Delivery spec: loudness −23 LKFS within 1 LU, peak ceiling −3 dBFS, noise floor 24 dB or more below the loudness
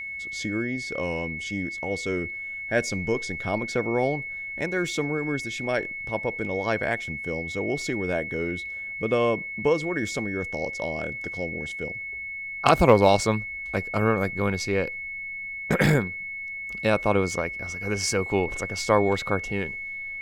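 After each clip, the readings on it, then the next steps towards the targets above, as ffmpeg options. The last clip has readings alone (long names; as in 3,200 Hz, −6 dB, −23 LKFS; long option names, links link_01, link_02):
interfering tone 2,200 Hz; level of the tone −32 dBFS; integrated loudness −26.5 LKFS; sample peak −3.5 dBFS; target loudness −23.0 LKFS
→ -af "bandreject=frequency=2200:width=30"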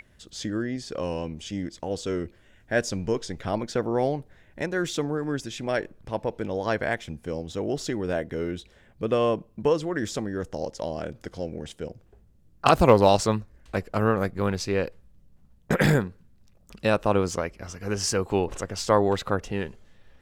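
interfering tone none found; integrated loudness −27.0 LKFS; sample peak −3.5 dBFS; target loudness −23.0 LKFS
→ -af "volume=4dB,alimiter=limit=-3dB:level=0:latency=1"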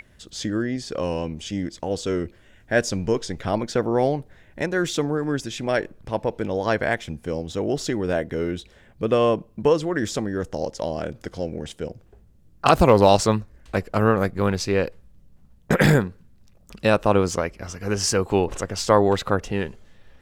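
integrated loudness −23.5 LKFS; sample peak −3.0 dBFS; background noise floor −54 dBFS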